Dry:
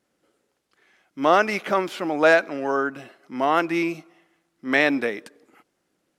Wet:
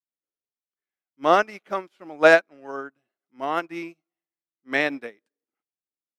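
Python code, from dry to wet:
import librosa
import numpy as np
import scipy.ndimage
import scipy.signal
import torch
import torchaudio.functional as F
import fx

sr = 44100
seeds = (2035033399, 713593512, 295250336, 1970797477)

y = fx.upward_expand(x, sr, threshold_db=-39.0, expansion=2.5)
y = y * librosa.db_to_amplitude(3.5)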